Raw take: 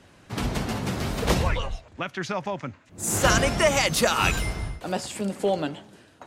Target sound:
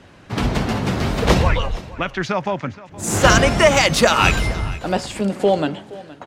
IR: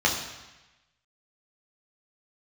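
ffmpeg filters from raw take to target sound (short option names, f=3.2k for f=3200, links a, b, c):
-filter_complex "[0:a]asplit=2[a][b];[b]adynamicsmooth=sensitivity=1.5:basefreq=6.6k,volume=3dB[c];[a][c]amix=inputs=2:normalize=0,aecho=1:1:470:0.112"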